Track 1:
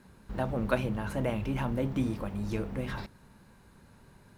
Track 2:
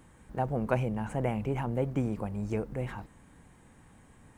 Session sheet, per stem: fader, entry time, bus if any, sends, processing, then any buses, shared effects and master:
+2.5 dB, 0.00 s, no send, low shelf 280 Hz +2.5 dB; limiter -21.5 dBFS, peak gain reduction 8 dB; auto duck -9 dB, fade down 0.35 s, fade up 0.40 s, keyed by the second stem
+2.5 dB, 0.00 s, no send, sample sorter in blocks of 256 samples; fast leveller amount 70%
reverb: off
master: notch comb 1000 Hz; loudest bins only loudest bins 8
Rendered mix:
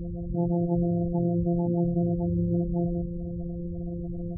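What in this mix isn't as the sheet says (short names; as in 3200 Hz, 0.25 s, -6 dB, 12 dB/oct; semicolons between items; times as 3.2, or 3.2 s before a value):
stem 1 +2.5 dB -> -3.5 dB; master: missing notch comb 1000 Hz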